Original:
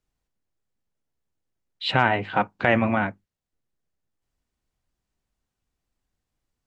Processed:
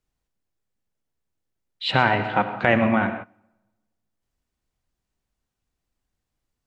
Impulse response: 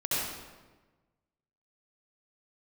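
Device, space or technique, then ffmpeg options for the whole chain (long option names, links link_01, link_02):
keyed gated reverb: -filter_complex "[0:a]asplit=3[link_01][link_02][link_03];[1:a]atrim=start_sample=2205[link_04];[link_02][link_04]afir=irnorm=-1:irlink=0[link_05];[link_03]apad=whole_len=293730[link_06];[link_05][link_06]sidechaingate=range=-20dB:threshold=-43dB:ratio=16:detection=peak,volume=-16.5dB[link_07];[link_01][link_07]amix=inputs=2:normalize=0"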